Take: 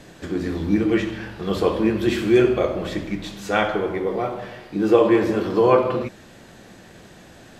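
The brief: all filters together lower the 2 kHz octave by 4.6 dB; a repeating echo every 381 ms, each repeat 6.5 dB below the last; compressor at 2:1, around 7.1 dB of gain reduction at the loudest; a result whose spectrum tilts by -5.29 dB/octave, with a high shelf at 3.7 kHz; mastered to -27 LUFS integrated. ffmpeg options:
-af "equalizer=f=2000:t=o:g=-5,highshelf=f=3700:g=-4.5,acompressor=threshold=0.0631:ratio=2,aecho=1:1:381|762|1143|1524|1905|2286:0.473|0.222|0.105|0.0491|0.0231|0.0109,volume=0.841"

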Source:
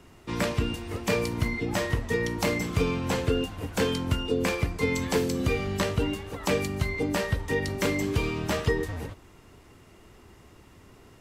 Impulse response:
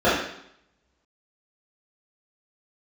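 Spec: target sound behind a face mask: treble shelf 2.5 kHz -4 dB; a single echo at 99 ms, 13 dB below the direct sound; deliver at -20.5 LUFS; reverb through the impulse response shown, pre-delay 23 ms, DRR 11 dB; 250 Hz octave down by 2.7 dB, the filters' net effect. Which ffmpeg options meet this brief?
-filter_complex "[0:a]equalizer=f=250:t=o:g=-3.5,aecho=1:1:99:0.224,asplit=2[s0][s1];[1:a]atrim=start_sample=2205,adelay=23[s2];[s1][s2]afir=irnorm=-1:irlink=0,volume=0.0211[s3];[s0][s3]amix=inputs=2:normalize=0,highshelf=f=2500:g=-4,volume=2.66"

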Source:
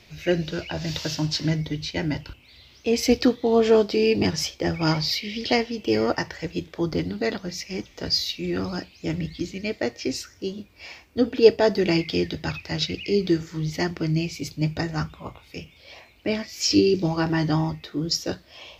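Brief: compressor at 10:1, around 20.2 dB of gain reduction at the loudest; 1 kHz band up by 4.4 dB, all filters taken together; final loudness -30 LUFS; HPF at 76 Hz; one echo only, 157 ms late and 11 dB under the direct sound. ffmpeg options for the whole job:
-af "highpass=76,equalizer=f=1000:t=o:g=6,acompressor=threshold=0.0398:ratio=10,aecho=1:1:157:0.282,volume=1.41"

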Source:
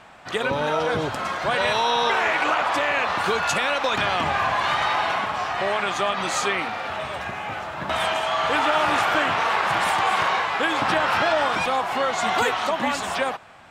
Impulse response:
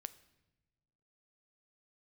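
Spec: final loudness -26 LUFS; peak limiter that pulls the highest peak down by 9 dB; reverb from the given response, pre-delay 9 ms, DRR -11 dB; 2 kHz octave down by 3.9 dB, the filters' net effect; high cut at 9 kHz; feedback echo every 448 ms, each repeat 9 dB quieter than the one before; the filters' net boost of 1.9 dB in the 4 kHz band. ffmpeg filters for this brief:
-filter_complex "[0:a]lowpass=9000,equalizer=f=2000:t=o:g=-6.5,equalizer=f=4000:t=o:g=5,alimiter=limit=0.119:level=0:latency=1,aecho=1:1:448|896|1344|1792:0.355|0.124|0.0435|0.0152,asplit=2[s0][s1];[1:a]atrim=start_sample=2205,adelay=9[s2];[s1][s2]afir=irnorm=-1:irlink=0,volume=5.62[s3];[s0][s3]amix=inputs=2:normalize=0,volume=0.299"

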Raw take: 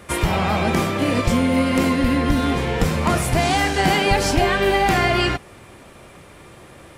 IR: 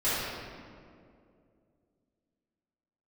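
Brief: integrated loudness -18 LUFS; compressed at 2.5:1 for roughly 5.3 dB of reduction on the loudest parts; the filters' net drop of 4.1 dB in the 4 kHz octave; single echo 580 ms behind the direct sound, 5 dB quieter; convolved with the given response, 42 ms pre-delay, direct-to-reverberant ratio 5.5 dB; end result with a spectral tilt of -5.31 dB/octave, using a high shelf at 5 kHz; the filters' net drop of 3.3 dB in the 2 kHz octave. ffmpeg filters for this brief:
-filter_complex "[0:a]equalizer=f=2000:t=o:g=-3,equalizer=f=4000:t=o:g=-6,highshelf=f=5000:g=3.5,acompressor=threshold=0.0794:ratio=2.5,aecho=1:1:580:0.562,asplit=2[s0][s1];[1:a]atrim=start_sample=2205,adelay=42[s2];[s1][s2]afir=irnorm=-1:irlink=0,volume=0.126[s3];[s0][s3]amix=inputs=2:normalize=0,volume=1.58"

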